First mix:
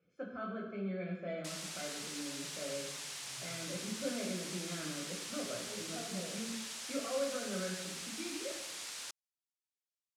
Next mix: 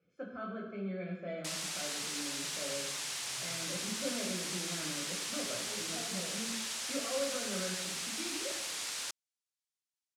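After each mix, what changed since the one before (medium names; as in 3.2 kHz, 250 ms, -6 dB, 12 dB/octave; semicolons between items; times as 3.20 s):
background +5.5 dB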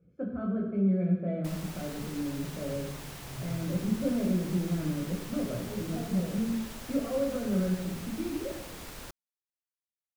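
master: remove frequency weighting ITU-R 468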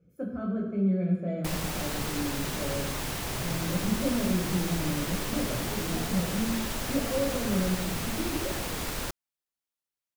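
speech: remove distance through air 220 m; background +10.5 dB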